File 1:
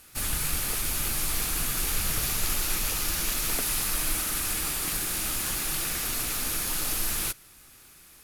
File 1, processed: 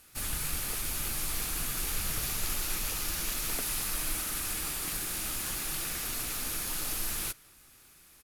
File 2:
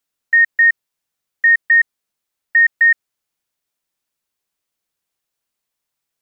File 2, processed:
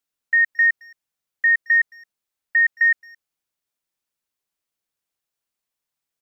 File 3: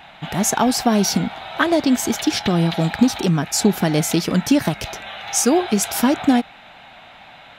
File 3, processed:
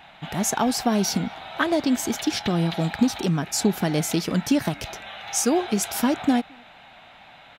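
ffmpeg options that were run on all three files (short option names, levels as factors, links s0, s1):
-filter_complex "[0:a]asplit=2[s0][s1];[s1]adelay=220,highpass=300,lowpass=3400,asoftclip=type=hard:threshold=0.266,volume=0.0501[s2];[s0][s2]amix=inputs=2:normalize=0,volume=0.562"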